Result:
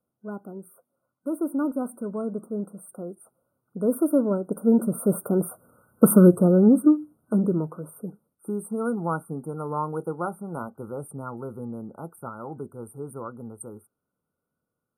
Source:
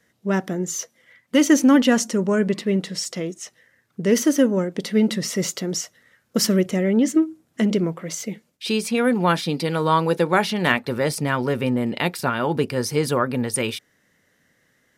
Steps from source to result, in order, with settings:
source passing by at 0:05.86, 20 m/s, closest 11 metres
brick-wall band-stop 1,500–8,500 Hz
level +7 dB

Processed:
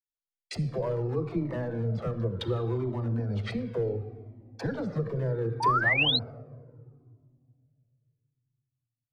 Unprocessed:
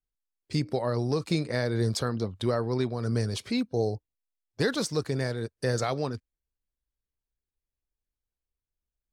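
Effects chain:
on a send: feedback echo with a band-pass in the loop 74 ms, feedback 57%, band-pass 1,400 Hz, level −19 dB
on the sum: de-essing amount 60%
treble cut that deepens with the level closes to 1,000 Hz, closed at −26.5 dBFS
in parallel at −1 dB: brickwall limiter −27.5 dBFS, peak gain reduction 11.5 dB
on the sum: downward compressor 8 to 1, threshold −28 dBFS, peak gain reduction 9 dB
hard clipping −24.5 dBFS, distortion −21 dB
all-pass dispersion lows, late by 62 ms, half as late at 340 Hz
downward expander −47 dBFS
rectangular room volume 3,400 cubic metres, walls mixed, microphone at 0.71 metres
sound drawn into the spectrogram rise, 0:05.60–0:06.19, 850–4,300 Hz −27 dBFS
flanger whose copies keep moving one way falling 0.69 Hz
level +6.5 dB

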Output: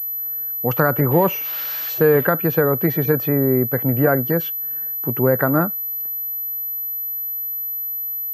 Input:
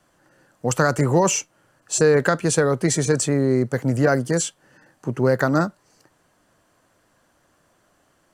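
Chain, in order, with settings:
0:01.11–0:02.25: spike at every zero crossing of −17 dBFS
treble cut that deepens with the level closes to 2,100 Hz, closed at −16 dBFS
switching amplifier with a slow clock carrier 12,000 Hz
level +1.5 dB

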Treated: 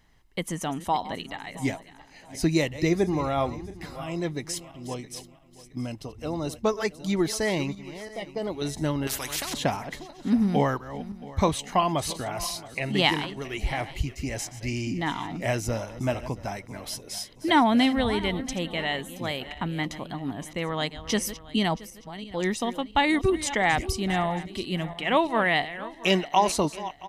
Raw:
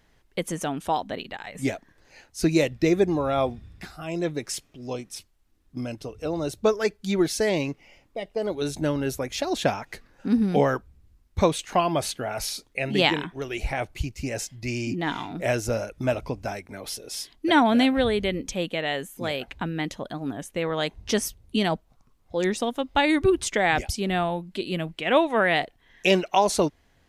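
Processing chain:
feedback delay that plays each chunk backwards 337 ms, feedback 53%, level −14 dB
comb filter 1 ms, depth 37%
0:09.07–0:09.54: every bin compressed towards the loudest bin 4 to 1
level −1.5 dB

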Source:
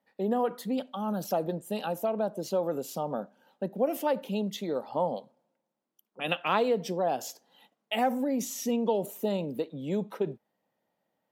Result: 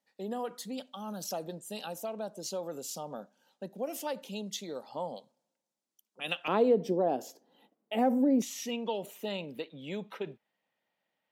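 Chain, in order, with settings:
parametric band 6,500 Hz +14.5 dB 2.1 octaves, from 0:06.48 320 Hz, from 0:08.42 2,600 Hz
level −9 dB

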